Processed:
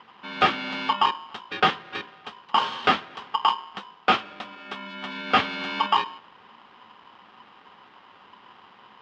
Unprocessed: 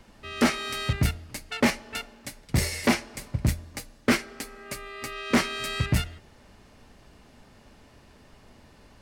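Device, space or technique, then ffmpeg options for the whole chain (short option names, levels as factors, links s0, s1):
ring modulator pedal into a guitar cabinet: -af "aeval=exprs='val(0)*sgn(sin(2*PI*1000*n/s))':c=same,highpass=110,equalizer=f=140:t=q:w=4:g=-5,equalizer=f=220:t=q:w=4:g=7,equalizer=f=630:t=q:w=4:g=-5,lowpass=f=3500:w=0.5412,lowpass=f=3500:w=1.3066,volume=1.41"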